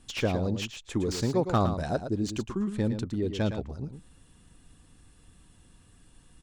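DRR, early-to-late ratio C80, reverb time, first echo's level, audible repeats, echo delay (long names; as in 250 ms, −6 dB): no reverb audible, no reverb audible, no reverb audible, −9.0 dB, 1, 112 ms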